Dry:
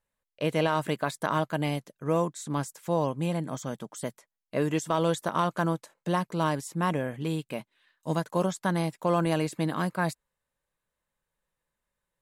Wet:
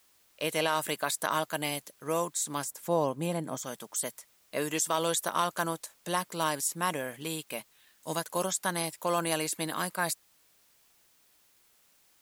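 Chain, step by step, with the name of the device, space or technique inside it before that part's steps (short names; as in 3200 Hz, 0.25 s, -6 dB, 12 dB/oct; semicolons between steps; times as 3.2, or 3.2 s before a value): turntable without a phono preamp (RIAA curve recording; white noise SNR 32 dB); 2.64–3.63 tilt shelf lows +6 dB, about 1200 Hz; gain -1.5 dB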